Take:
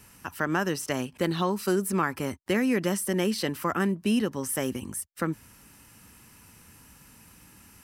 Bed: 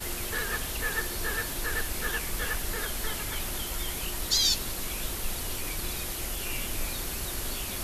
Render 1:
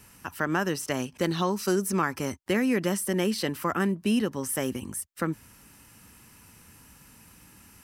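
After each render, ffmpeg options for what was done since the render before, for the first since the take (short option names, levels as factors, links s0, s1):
-filter_complex "[0:a]asettb=1/sr,asplit=3[s0][s1][s2];[s0]atrim=end=1.004[s3];[s1]atrim=start=1:end=2.39,asetpts=PTS-STARTPTS,afade=t=in:d=0.004:c=qsin,afade=t=out:st=1.386:d=0.004:c=qsin,equalizer=f=5900:w=3:g=8[s4];[s2]atrim=start=2.386[s5];[s3][s4]acrossfade=d=0.004:c1=hsin:c2=qsin[s6];[s6][s5]acrossfade=d=0.004:c1=qsin:c2=hsin"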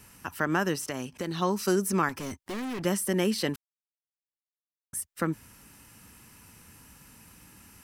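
-filter_complex "[0:a]asplit=3[s0][s1][s2];[s0]afade=t=out:st=0.75:d=0.02[s3];[s1]acompressor=threshold=0.0316:ratio=3:attack=3.2:release=140:knee=1:detection=peak,afade=t=in:st=0.75:d=0.02,afade=t=out:st=1.41:d=0.02[s4];[s2]afade=t=in:st=1.41:d=0.02[s5];[s3][s4][s5]amix=inputs=3:normalize=0,asettb=1/sr,asplit=3[s6][s7][s8];[s6]atrim=end=2.094[s9];[s7]atrim=start=2.09:end=2.85,asetpts=PTS-STARTPTS,afade=t=in:d=0.004:c=qsin,afade=t=out:st=0.756:d=0.004:c=qsin,volume=42.2,asoftclip=hard,volume=0.0237[s10];[s8]atrim=start=2.846[s11];[s9][s10]acrossfade=d=0.004:c1=hsin:c2=qsin[s12];[s12][s11]acrossfade=d=0.004:c1=qsin:c2=hsin,asplit=3[s13][s14][s15];[s13]atrim=end=3.56,asetpts=PTS-STARTPTS,afade=t=out:st=3.556:d=0.004:c=hsin[s16];[s14]atrim=start=3.56:end=4.93,asetpts=PTS-STARTPTS,volume=0[s17];[s15]atrim=start=4.93,asetpts=PTS-STARTPTS,afade=t=in:d=0.004:c=hsin[s18];[s16][s17][s18]concat=n=3:v=0:a=1"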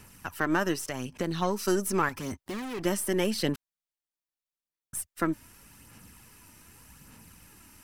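-af "aeval=exprs='if(lt(val(0),0),0.708*val(0),val(0))':c=same,aphaser=in_gain=1:out_gain=1:delay=3.3:decay=0.38:speed=0.84:type=sinusoidal"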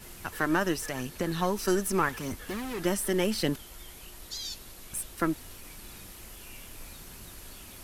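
-filter_complex "[1:a]volume=0.211[s0];[0:a][s0]amix=inputs=2:normalize=0"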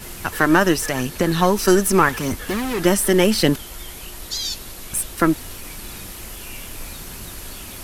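-af "volume=3.76,alimiter=limit=0.891:level=0:latency=1"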